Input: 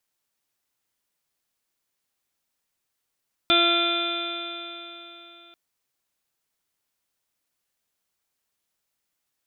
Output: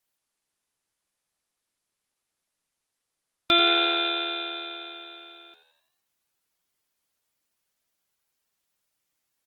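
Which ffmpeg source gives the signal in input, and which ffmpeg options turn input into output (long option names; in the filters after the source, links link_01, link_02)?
-f lavfi -i "aevalsrc='0.0631*pow(10,-3*t/3.58)*sin(2*PI*341.12*t)+0.0562*pow(10,-3*t/3.58)*sin(2*PI*682.99*t)+0.00944*pow(10,-3*t/3.58)*sin(2*PI*1026.36*t)+0.0794*pow(10,-3*t/3.58)*sin(2*PI*1371.94*t)+0.01*pow(10,-3*t/3.58)*sin(2*PI*1720.49*t)+0.0158*pow(10,-3*t/3.58)*sin(2*PI*2072.71*t)+0.0631*pow(10,-3*t/3.58)*sin(2*PI*2429.32*t)+0.0141*pow(10,-3*t/3.58)*sin(2*PI*2791*t)+0.0316*pow(10,-3*t/3.58)*sin(2*PI*3158.43*t)+0.126*pow(10,-3*t/3.58)*sin(2*PI*3532.27*t)+0.0178*pow(10,-3*t/3.58)*sin(2*PI*3913.16*t)':duration=2.04:sample_rate=44100"
-filter_complex "[0:a]asplit=2[link_01][link_02];[link_02]asplit=6[link_03][link_04][link_05][link_06][link_07][link_08];[link_03]adelay=86,afreqshift=77,volume=-11dB[link_09];[link_04]adelay=172,afreqshift=154,volume=-16.7dB[link_10];[link_05]adelay=258,afreqshift=231,volume=-22.4dB[link_11];[link_06]adelay=344,afreqshift=308,volume=-28dB[link_12];[link_07]adelay=430,afreqshift=385,volume=-33.7dB[link_13];[link_08]adelay=516,afreqshift=462,volume=-39.4dB[link_14];[link_09][link_10][link_11][link_12][link_13][link_14]amix=inputs=6:normalize=0[link_15];[link_01][link_15]amix=inputs=2:normalize=0" -ar 48000 -c:a libopus -b:a 20k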